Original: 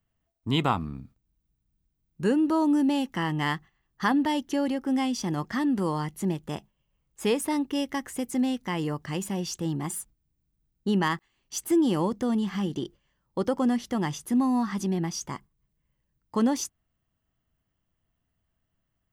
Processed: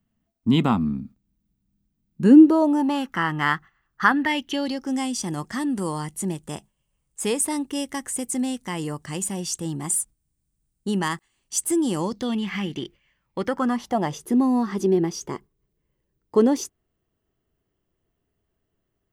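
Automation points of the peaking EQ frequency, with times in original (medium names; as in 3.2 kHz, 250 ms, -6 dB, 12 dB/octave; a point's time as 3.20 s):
peaking EQ +15 dB 0.74 oct
2.23 s 220 Hz
3.01 s 1.4 kHz
4.09 s 1.4 kHz
5.04 s 8.6 kHz
11.93 s 8.6 kHz
12.42 s 2.3 kHz
13.40 s 2.3 kHz
14.23 s 400 Hz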